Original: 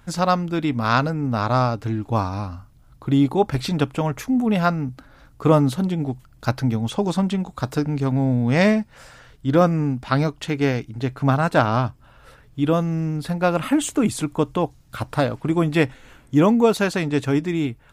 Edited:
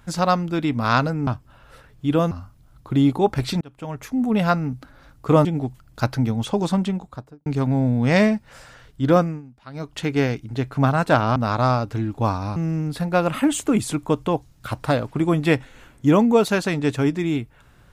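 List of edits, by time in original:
0:01.27–0:02.47: swap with 0:11.81–0:12.85
0:03.77–0:04.51: fade in
0:05.61–0:05.90: remove
0:07.22–0:07.91: fade out and dull
0:09.61–0:10.44: duck −20 dB, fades 0.26 s

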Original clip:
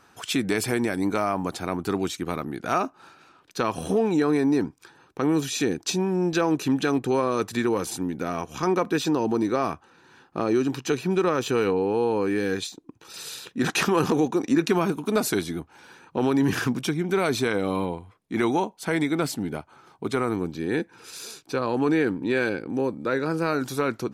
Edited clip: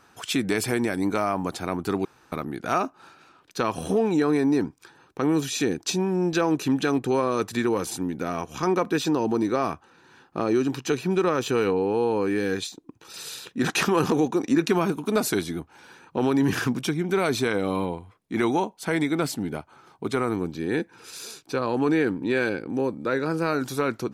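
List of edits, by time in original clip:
0:02.05–0:02.32: fill with room tone

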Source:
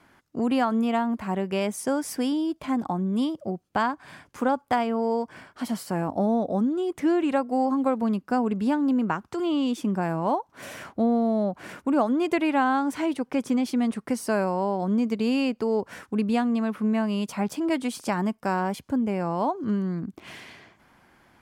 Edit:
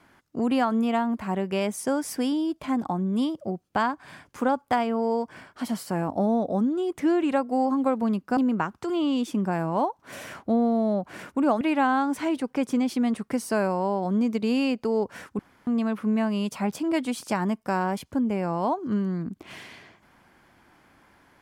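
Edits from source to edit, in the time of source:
0:08.37–0:08.87: remove
0:12.11–0:12.38: remove
0:16.16–0:16.44: fill with room tone

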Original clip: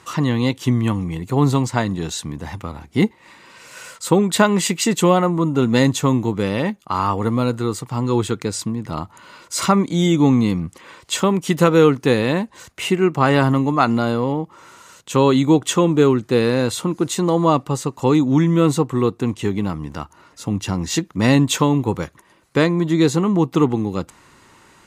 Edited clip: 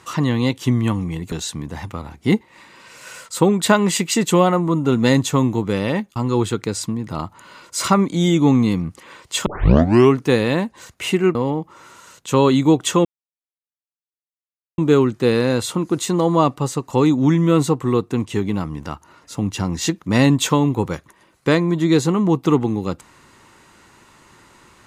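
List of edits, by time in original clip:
0:01.32–0:02.02: remove
0:06.86–0:07.94: remove
0:11.24: tape start 0.70 s
0:13.13–0:14.17: remove
0:15.87: splice in silence 1.73 s

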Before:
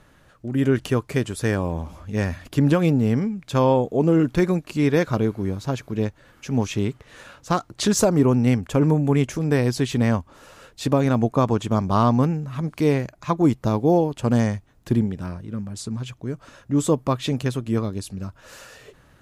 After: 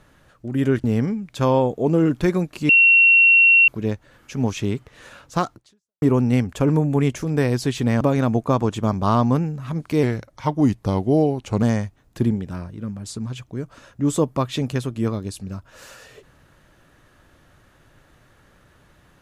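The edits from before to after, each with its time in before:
0:00.84–0:02.98: remove
0:04.83–0:05.82: beep over 2,730 Hz −9.5 dBFS
0:07.68–0:08.16: fade out exponential
0:10.15–0:10.89: remove
0:12.91–0:14.33: play speed 89%

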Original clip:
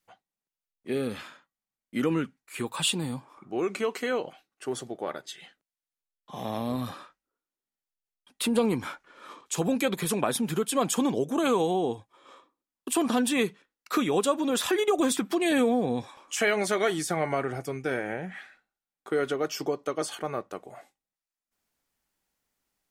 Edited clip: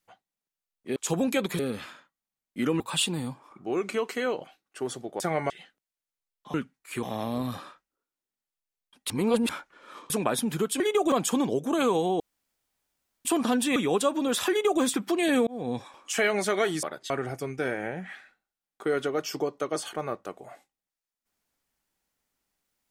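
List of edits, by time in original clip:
0:02.17–0:02.66: move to 0:06.37
0:05.06–0:05.33: swap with 0:17.06–0:17.36
0:08.44–0:08.83: reverse
0:09.44–0:10.07: move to 0:00.96
0:11.85–0:12.90: fill with room tone
0:13.41–0:13.99: remove
0:14.73–0:15.05: duplicate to 0:10.77
0:15.70–0:15.99: fade in

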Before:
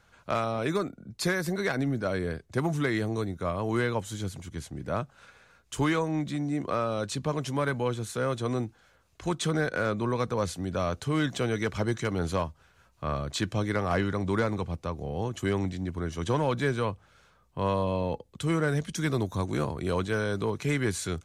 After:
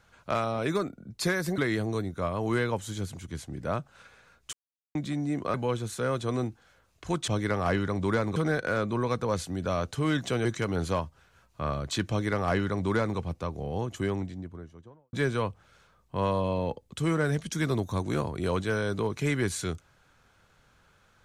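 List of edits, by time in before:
0:01.58–0:02.81: remove
0:05.76–0:06.18: silence
0:06.77–0:07.71: remove
0:11.54–0:11.88: remove
0:13.53–0:14.61: duplicate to 0:09.45
0:15.12–0:16.56: fade out and dull

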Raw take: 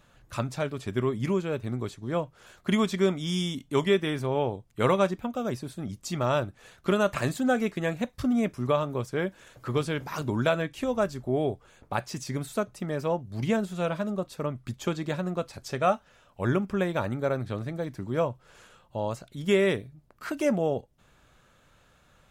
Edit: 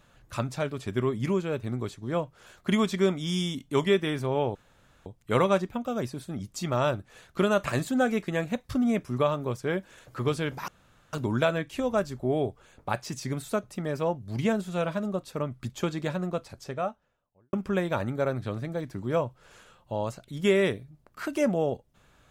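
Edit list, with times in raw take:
0:04.55: splice in room tone 0.51 s
0:10.17: splice in room tone 0.45 s
0:15.18–0:16.57: fade out and dull

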